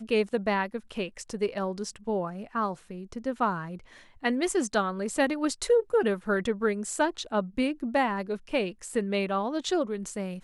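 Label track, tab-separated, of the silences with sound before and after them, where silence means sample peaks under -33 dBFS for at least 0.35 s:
3.750000	4.240000	silence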